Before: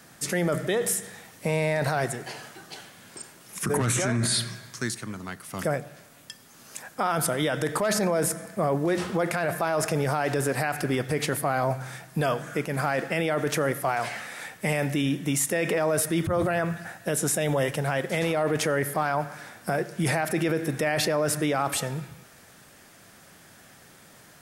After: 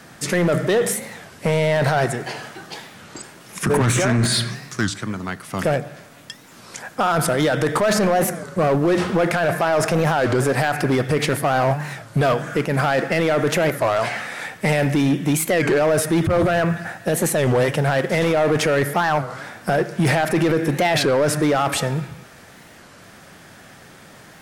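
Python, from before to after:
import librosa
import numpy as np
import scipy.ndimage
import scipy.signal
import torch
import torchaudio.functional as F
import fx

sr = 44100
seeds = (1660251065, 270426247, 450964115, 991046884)

y = fx.high_shelf(x, sr, hz=6800.0, db=-10.5)
y = np.clip(y, -10.0 ** (-22.0 / 20.0), 10.0 ** (-22.0 / 20.0))
y = fx.record_warp(y, sr, rpm=33.33, depth_cents=250.0)
y = y * librosa.db_to_amplitude(9.0)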